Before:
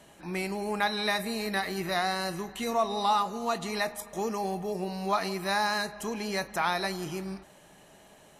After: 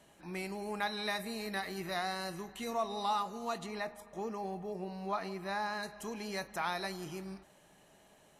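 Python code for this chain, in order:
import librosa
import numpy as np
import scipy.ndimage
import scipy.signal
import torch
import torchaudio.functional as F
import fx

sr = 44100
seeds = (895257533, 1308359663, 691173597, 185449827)

y = fx.high_shelf(x, sr, hz=3800.0, db=-11.5, at=(3.66, 5.83))
y = y * 10.0 ** (-7.5 / 20.0)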